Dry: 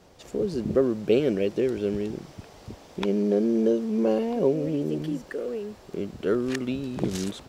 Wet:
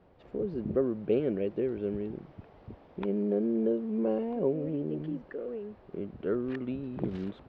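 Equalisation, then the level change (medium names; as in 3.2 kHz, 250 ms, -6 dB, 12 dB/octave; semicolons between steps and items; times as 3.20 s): distance through air 390 m; treble shelf 3.9 kHz -7 dB; -5.0 dB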